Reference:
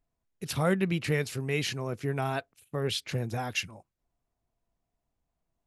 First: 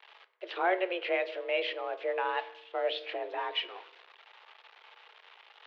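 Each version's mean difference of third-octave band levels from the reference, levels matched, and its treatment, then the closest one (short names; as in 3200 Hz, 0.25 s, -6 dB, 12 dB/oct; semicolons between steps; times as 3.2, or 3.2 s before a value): 15.5 dB: switching spikes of -32 dBFS; reverse; upward compressor, threshold -31 dBFS; reverse; FDN reverb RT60 0.78 s, low-frequency decay 1.45×, high-frequency decay 0.55×, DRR 11.5 dB; mistuned SSB +180 Hz 230–3200 Hz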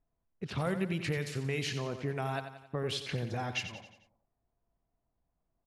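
5.5 dB: de-esser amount 65%; low-pass opened by the level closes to 1600 Hz, open at -24 dBFS; compressor 2.5:1, threshold -32 dBFS, peak gain reduction 8 dB; on a send: feedback echo 89 ms, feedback 50%, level -10 dB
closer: second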